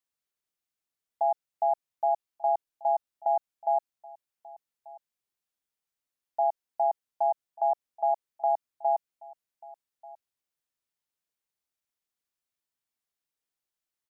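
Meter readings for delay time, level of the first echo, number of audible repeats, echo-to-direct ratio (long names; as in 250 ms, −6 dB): 1,188 ms, −21.5 dB, 1, −21.5 dB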